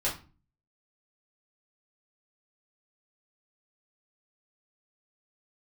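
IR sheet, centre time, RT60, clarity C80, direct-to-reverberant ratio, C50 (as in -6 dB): 24 ms, 0.35 s, 15.0 dB, -6.5 dB, 9.5 dB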